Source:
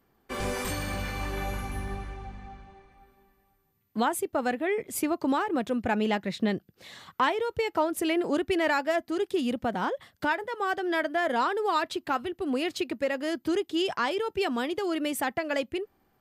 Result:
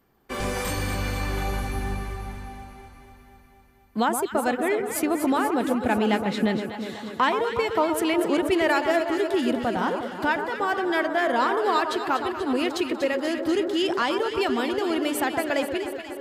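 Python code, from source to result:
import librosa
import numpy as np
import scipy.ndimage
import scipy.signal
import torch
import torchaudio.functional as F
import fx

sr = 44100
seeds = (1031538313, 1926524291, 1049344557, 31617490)

p1 = x + fx.echo_alternate(x, sr, ms=121, hz=1400.0, feedback_pct=82, wet_db=-7.0, dry=0)
y = p1 * librosa.db_to_amplitude(3.0)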